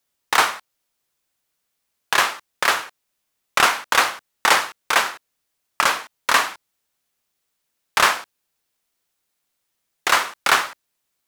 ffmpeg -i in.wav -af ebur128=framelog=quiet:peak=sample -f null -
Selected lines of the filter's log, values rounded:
Integrated loudness:
  I:         -19.8 LUFS
  Threshold: -30.3 LUFS
Loudness range:
  LRA:         6.1 LU
  Threshold: -42.3 LUFS
  LRA low:   -26.1 LUFS
  LRA high:  -20.0 LUFS
Sample peak:
  Peak:       -1.9 dBFS